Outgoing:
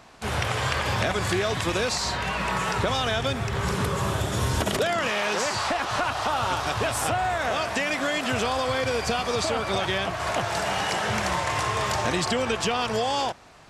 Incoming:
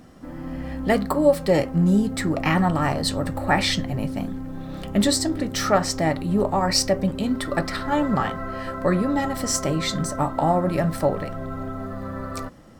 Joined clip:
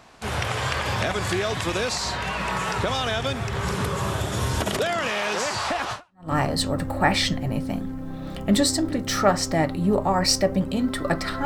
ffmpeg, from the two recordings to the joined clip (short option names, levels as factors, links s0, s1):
-filter_complex "[0:a]apad=whole_dur=11.45,atrim=end=11.45,atrim=end=6.32,asetpts=PTS-STARTPTS[s0];[1:a]atrim=start=2.39:end=7.92,asetpts=PTS-STARTPTS[s1];[s0][s1]acrossfade=d=0.4:c1=exp:c2=exp"